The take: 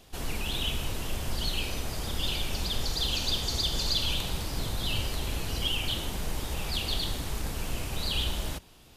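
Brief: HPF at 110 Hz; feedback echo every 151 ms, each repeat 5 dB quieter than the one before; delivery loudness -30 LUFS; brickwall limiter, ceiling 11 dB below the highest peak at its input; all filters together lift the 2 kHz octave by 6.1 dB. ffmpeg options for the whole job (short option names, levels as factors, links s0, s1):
-af "highpass=110,equalizer=f=2000:t=o:g=8.5,alimiter=level_in=1.12:limit=0.0631:level=0:latency=1,volume=0.891,aecho=1:1:151|302|453|604|755|906|1057:0.562|0.315|0.176|0.0988|0.0553|0.031|0.0173,volume=1.12"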